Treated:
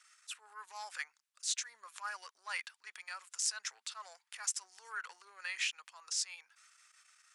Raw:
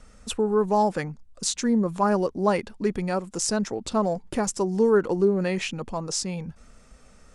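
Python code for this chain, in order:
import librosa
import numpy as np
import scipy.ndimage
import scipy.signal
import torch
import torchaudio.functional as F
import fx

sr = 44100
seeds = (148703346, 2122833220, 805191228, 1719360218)

y = fx.transient(x, sr, attack_db=-11, sustain_db=3)
y = scipy.signal.sosfilt(scipy.signal.butter(4, 1400.0, 'highpass', fs=sr, output='sos'), y)
y = y * librosa.db_to_amplitude(-4.0)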